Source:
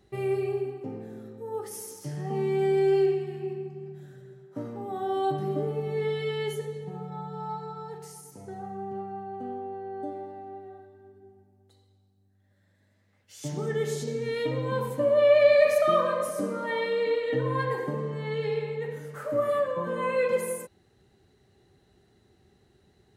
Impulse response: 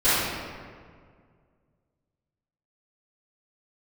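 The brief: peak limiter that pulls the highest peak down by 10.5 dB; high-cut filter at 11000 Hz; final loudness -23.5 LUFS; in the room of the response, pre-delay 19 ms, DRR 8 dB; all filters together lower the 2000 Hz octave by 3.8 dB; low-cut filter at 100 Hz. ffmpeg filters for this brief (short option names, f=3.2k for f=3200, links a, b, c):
-filter_complex "[0:a]highpass=100,lowpass=11k,equalizer=f=2k:t=o:g=-4.5,alimiter=limit=-20dB:level=0:latency=1,asplit=2[a][b];[1:a]atrim=start_sample=2205,adelay=19[c];[b][c]afir=irnorm=-1:irlink=0,volume=-27.5dB[d];[a][d]amix=inputs=2:normalize=0,volume=6.5dB"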